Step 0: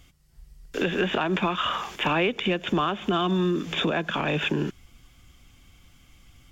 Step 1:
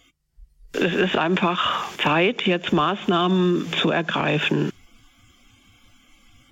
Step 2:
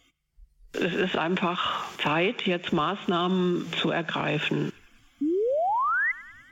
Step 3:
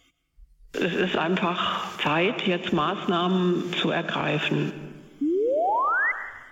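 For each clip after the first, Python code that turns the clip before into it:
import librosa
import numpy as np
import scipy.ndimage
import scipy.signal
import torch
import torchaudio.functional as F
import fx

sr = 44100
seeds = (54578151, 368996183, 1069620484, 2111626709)

y1 = fx.noise_reduce_blind(x, sr, reduce_db=16)
y1 = y1 * 10.0 ** (4.5 / 20.0)
y2 = fx.spec_paint(y1, sr, seeds[0], shape='rise', start_s=5.21, length_s=0.91, low_hz=270.0, high_hz=2100.0, level_db=-19.0)
y2 = fx.echo_banded(y2, sr, ms=100, feedback_pct=64, hz=1800.0, wet_db=-19.0)
y2 = y2 * 10.0 ** (-5.5 / 20.0)
y3 = fx.rev_freeverb(y2, sr, rt60_s=1.4, hf_ratio=0.4, predelay_ms=80, drr_db=12.0)
y3 = y3 * 10.0 ** (1.5 / 20.0)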